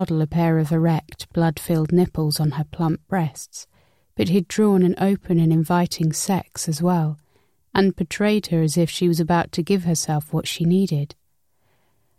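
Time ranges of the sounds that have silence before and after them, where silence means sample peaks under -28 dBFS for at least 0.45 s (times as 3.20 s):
4.19–7.13 s
7.75–11.11 s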